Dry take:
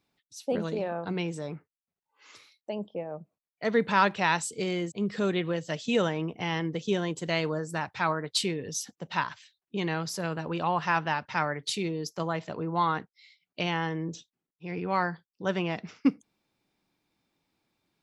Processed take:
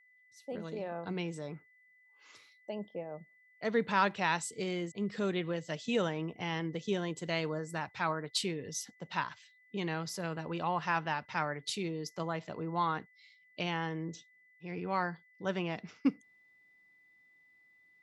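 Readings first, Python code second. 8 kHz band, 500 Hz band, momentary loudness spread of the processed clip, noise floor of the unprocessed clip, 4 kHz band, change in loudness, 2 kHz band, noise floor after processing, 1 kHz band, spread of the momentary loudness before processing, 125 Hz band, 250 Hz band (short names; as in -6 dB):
-5.5 dB, -5.5 dB, 11 LU, under -85 dBFS, -5.5 dB, -5.5 dB, -5.5 dB, -66 dBFS, -5.5 dB, 11 LU, -5.5 dB, -5.5 dB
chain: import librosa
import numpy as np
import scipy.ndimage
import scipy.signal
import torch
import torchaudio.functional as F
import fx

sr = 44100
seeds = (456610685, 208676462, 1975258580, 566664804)

y = fx.fade_in_head(x, sr, length_s=1.06)
y = y + 10.0 ** (-57.0 / 20.0) * np.sin(2.0 * np.pi * 2000.0 * np.arange(len(y)) / sr)
y = y * 10.0 ** (-5.5 / 20.0)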